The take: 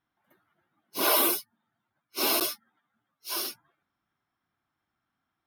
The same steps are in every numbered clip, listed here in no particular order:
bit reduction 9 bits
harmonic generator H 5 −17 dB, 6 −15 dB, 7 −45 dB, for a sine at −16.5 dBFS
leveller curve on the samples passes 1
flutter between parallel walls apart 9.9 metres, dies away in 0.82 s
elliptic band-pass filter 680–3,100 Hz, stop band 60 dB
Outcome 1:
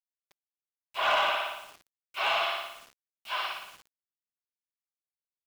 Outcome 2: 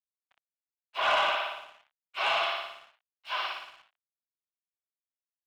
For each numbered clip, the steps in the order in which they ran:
flutter between parallel walls, then harmonic generator, then elliptic band-pass filter, then bit reduction, then leveller curve on the samples
flutter between parallel walls, then bit reduction, then harmonic generator, then elliptic band-pass filter, then leveller curve on the samples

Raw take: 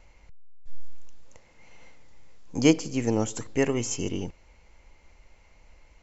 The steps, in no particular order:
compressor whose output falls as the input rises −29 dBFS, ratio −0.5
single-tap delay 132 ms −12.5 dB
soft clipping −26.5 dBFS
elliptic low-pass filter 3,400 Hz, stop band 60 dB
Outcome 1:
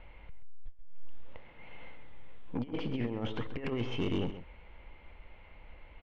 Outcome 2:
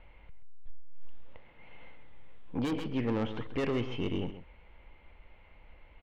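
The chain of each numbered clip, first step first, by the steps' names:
compressor whose output falls as the input rises, then elliptic low-pass filter, then soft clipping, then single-tap delay
elliptic low-pass filter, then soft clipping, then single-tap delay, then compressor whose output falls as the input rises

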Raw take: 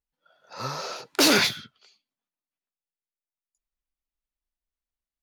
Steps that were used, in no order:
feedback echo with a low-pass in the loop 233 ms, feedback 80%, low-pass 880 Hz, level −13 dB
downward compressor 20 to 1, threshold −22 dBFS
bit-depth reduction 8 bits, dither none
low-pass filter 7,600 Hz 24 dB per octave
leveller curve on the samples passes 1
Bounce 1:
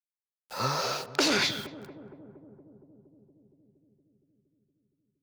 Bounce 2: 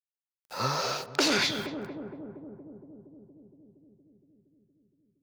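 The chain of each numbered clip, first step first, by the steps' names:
low-pass filter, then bit-depth reduction, then leveller curve on the samples, then downward compressor, then feedback echo with a low-pass in the loop
low-pass filter, then leveller curve on the samples, then bit-depth reduction, then feedback echo with a low-pass in the loop, then downward compressor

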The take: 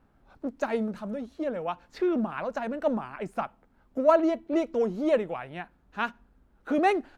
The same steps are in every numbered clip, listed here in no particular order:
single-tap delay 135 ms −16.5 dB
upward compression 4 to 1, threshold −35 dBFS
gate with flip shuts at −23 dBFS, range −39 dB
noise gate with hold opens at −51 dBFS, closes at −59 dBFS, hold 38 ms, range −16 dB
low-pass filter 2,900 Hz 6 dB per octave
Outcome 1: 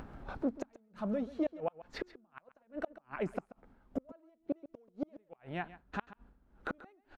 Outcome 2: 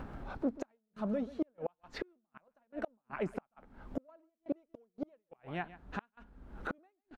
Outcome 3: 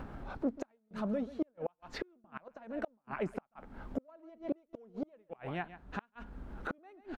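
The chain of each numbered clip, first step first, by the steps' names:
noise gate with hold, then upward compression, then low-pass filter, then gate with flip, then single-tap delay
upward compression, then single-tap delay, then gate with flip, then low-pass filter, then noise gate with hold
single-tap delay, then gate with flip, then upward compression, then noise gate with hold, then low-pass filter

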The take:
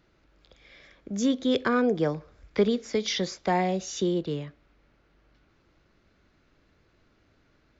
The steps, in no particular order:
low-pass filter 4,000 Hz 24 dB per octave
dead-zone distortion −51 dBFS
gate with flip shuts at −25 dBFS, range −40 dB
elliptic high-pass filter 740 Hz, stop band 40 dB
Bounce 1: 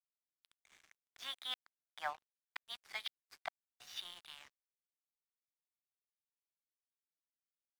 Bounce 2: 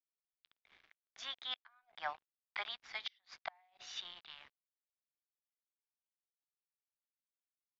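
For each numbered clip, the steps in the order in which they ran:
elliptic high-pass filter, then gate with flip, then low-pass filter, then dead-zone distortion
elliptic high-pass filter, then dead-zone distortion, then gate with flip, then low-pass filter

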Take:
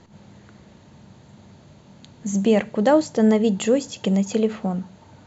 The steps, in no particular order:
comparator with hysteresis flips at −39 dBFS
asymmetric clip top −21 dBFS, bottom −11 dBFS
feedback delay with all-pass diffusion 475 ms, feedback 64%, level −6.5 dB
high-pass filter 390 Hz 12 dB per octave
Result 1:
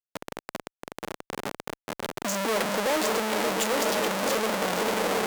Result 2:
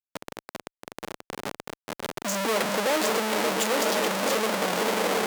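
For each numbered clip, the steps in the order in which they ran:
feedback delay with all-pass diffusion, then comparator with hysteresis, then high-pass filter, then asymmetric clip
feedback delay with all-pass diffusion, then comparator with hysteresis, then asymmetric clip, then high-pass filter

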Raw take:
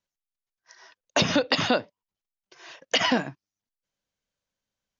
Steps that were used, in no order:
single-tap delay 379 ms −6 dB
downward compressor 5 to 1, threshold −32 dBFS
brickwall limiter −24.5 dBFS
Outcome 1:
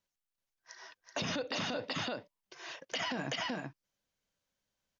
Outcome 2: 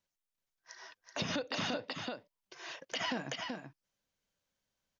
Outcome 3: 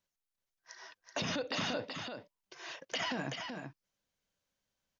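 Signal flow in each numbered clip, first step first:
single-tap delay, then brickwall limiter, then downward compressor
downward compressor, then single-tap delay, then brickwall limiter
brickwall limiter, then downward compressor, then single-tap delay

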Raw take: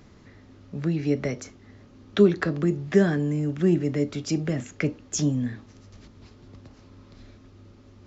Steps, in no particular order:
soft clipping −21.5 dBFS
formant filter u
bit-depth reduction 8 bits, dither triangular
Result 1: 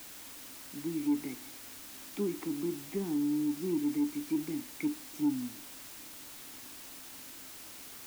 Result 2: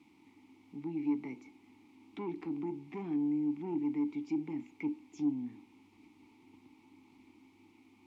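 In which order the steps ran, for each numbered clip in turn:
formant filter, then bit-depth reduction, then soft clipping
bit-depth reduction, then soft clipping, then formant filter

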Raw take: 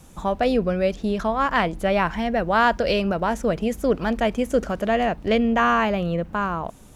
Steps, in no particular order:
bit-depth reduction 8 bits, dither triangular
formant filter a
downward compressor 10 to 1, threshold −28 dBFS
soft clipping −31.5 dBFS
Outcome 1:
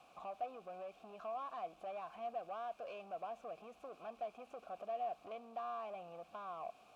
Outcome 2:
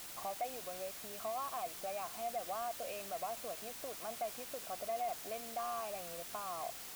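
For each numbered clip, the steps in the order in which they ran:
downward compressor, then bit-depth reduction, then soft clipping, then formant filter
downward compressor, then formant filter, then bit-depth reduction, then soft clipping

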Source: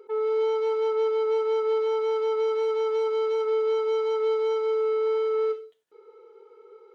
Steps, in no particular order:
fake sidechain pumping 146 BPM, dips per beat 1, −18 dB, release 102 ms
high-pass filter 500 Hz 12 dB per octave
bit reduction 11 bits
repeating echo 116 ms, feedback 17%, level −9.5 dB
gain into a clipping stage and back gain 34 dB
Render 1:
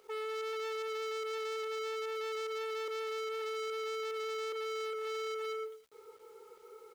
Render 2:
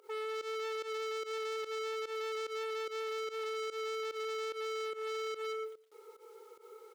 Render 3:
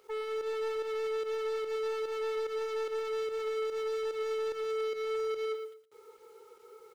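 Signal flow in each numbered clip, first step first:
fake sidechain pumping, then repeating echo, then gain into a clipping stage and back, then high-pass filter, then bit reduction
bit reduction, then repeating echo, then gain into a clipping stage and back, then high-pass filter, then fake sidechain pumping
high-pass filter, then gain into a clipping stage and back, then fake sidechain pumping, then bit reduction, then repeating echo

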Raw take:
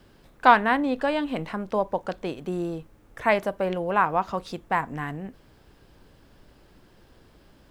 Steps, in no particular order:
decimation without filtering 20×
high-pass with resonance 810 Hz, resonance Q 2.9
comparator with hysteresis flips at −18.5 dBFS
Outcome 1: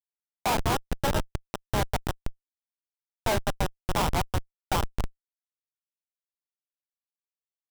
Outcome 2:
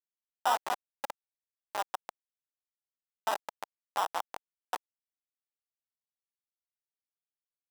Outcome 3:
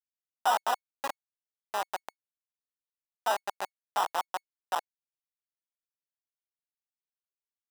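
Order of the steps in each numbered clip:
decimation without filtering, then high-pass with resonance, then comparator with hysteresis
decimation without filtering, then comparator with hysteresis, then high-pass with resonance
comparator with hysteresis, then decimation without filtering, then high-pass with resonance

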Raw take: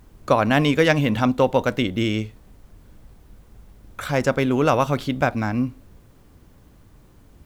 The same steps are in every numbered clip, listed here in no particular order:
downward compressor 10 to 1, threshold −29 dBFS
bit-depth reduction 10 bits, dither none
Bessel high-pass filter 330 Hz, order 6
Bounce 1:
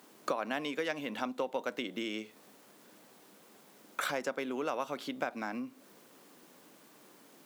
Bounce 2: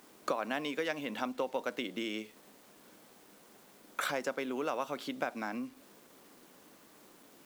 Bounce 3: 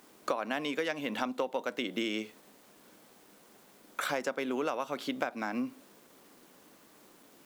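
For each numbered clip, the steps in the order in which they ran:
bit-depth reduction, then downward compressor, then Bessel high-pass filter
downward compressor, then Bessel high-pass filter, then bit-depth reduction
Bessel high-pass filter, then bit-depth reduction, then downward compressor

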